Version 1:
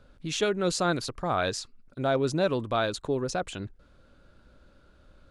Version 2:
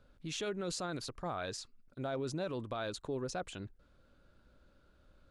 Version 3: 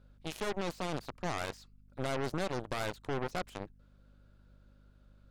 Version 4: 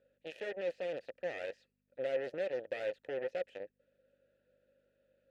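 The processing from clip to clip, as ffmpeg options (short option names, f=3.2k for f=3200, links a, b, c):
-af "alimiter=limit=-21.5dB:level=0:latency=1:release=30,volume=-8dB"
-filter_complex "[0:a]acrossover=split=3200[a][b];[b]acompressor=threshold=-49dB:ratio=4:attack=1:release=60[c];[a][c]amix=inputs=2:normalize=0,aeval=exprs='0.0355*(cos(1*acos(clip(val(0)/0.0355,-1,1)))-cos(1*PI/2))+0.0178*(cos(4*acos(clip(val(0)/0.0355,-1,1)))-cos(4*PI/2))+0.00794*(cos(6*acos(clip(val(0)/0.0355,-1,1)))-cos(6*PI/2))+0.00891*(cos(7*acos(clip(val(0)/0.0355,-1,1)))-cos(7*PI/2))':c=same,aeval=exprs='val(0)+0.001*(sin(2*PI*50*n/s)+sin(2*PI*2*50*n/s)/2+sin(2*PI*3*50*n/s)/3+sin(2*PI*4*50*n/s)/4+sin(2*PI*5*50*n/s)/5)':c=same"
-filter_complex "[0:a]asplit=3[a][b][c];[a]bandpass=f=530:t=q:w=8,volume=0dB[d];[b]bandpass=f=1.84k:t=q:w=8,volume=-6dB[e];[c]bandpass=f=2.48k:t=q:w=8,volume=-9dB[f];[d][e][f]amix=inputs=3:normalize=0,volume=7.5dB"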